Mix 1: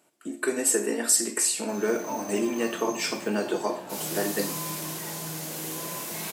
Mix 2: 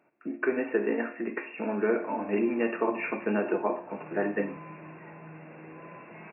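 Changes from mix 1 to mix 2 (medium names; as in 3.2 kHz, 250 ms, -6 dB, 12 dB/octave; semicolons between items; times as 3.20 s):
background -8.0 dB; master: add brick-wall FIR low-pass 2.8 kHz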